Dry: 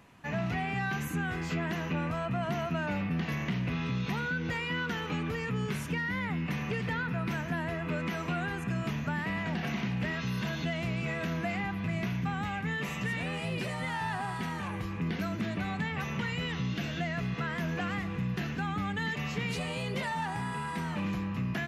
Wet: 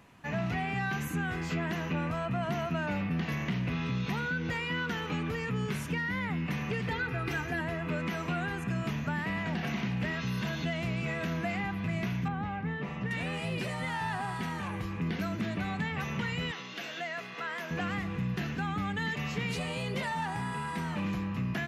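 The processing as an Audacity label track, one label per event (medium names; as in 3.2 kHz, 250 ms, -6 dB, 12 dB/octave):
6.910000	7.610000	comb 2.5 ms, depth 87%
12.280000	13.110000	FFT filter 810 Hz 0 dB, 5.3 kHz -13 dB, 8.2 kHz -26 dB
16.510000	17.710000	high-pass 470 Hz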